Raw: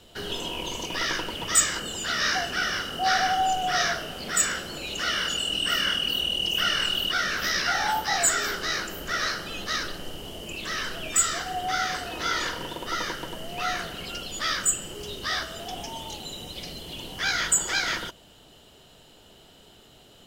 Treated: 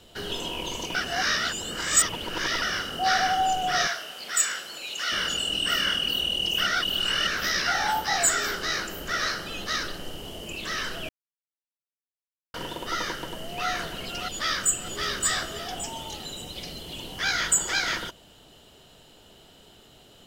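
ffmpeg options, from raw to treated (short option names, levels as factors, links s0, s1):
-filter_complex "[0:a]asettb=1/sr,asplit=3[s0][s1][s2];[s0]atrim=end=3.874[s3];[s1]atrim=start=3.87:end=5.12,asetpts=PTS-STARTPTS,afade=t=in:d=0.004:c=qsin,afade=t=out:st=1.246:d=0.004:c=qsin,highpass=f=1200:p=1[s4];[s2]atrim=start=5.116[s5];[s3][s4]acrossfade=d=0.004:c1=hsin:c2=qsin[s6];[s6][s5]acrossfade=d=0.004:c1=qsin:c2=hsin,asplit=2[s7][s8];[s8]afade=t=in:st=13.14:d=0.01,afade=t=out:st=13.68:d=0.01,aecho=0:1:600|1200|1800|2400:0.501187|0.175416|0.0613954|0.0214884[s9];[s7][s9]amix=inputs=2:normalize=0,asplit=2[s10][s11];[s11]afade=t=in:st=14.29:d=0.01,afade=t=out:st=15.01:d=0.01,aecho=0:1:570|1140|1710|2280:0.707946|0.212384|0.0637151|0.0191145[s12];[s10][s12]amix=inputs=2:normalize=0,asplit=7[s13][s14][s15][s16][s17][s18][s19];[s13]atrim=end=0.952[s20];[s14]atrim=start=0.948:end=2.622,asetpts=PTS-STARTPTS,areverse[s21];[s15]atrim=start=2.618:end=6.672[s22];[s16]atrim=start=6.668:end=7.272,asetpts=PTS-STARTPTS,areverse[s23];[s17]atrim=start=7.268:end=11.09,asetpts=PTS-STARTPTS,afade=t=out:st=3.818:d=0.004:c=hsin[s24];[s18]atrim=start=11.09:end=12.54,asetpts=PTS-STARTPTS,volume=0[s25];[s19]atrim=start=12.54,asetpts=PTS-STARTPTS,afade=t=in:d=0.004:c=hsin[s26];[s20][s21]acrossfade=d=0.004:c1=hsin:c2=hsin[s27];[s27][s22]acrossfade=d=0.004:c1=hsin:c2=hsin[s28];[s28][s23]acrossfade=d=0.004:c1=hsin:c2=hsin[s29];[s24][s25][s26]concat=n=3:v=0:a=1[s30];[s29][s30]acrossfade=d=0.004:c1=hsin:c2=hsin"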